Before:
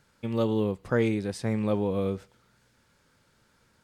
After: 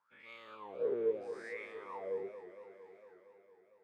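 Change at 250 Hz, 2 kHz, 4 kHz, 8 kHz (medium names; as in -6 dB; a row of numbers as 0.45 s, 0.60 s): -22.5 dB, -9.5 dB, under -15 dB, under -20 dB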